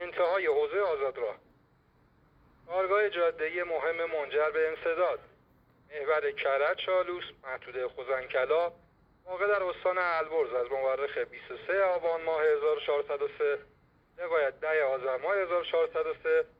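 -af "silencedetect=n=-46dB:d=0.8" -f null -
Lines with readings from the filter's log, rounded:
silence_start: 1.36
silence_end: 2.68 | silence_duration: 1.32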